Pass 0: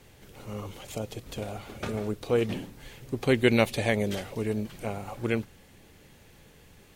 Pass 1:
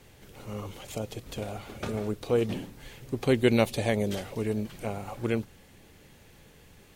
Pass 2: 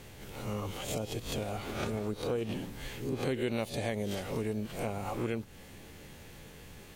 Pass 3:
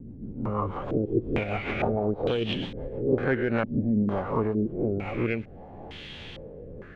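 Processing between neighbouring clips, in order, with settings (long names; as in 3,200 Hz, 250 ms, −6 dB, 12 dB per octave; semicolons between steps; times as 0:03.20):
dynamic equaliser 2,000 Hz, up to −5 dB, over −41 dBFS, Q 1.1
peak hold with a rise ahead of every peak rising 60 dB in 0.38 s; downward compressor 4 to 1, threshold −35 dBFS, peak gain reduction 15.5 dB; level +3 dB
stylus tracing distortion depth 0.2 ms; rotating-speaker cabinet horn 6.3 Hz, later 0.6 Hz, at 0:03.03; low-pass on a step sequencer 2.2 Hz 250–3,300 Hz; level +7.5 dB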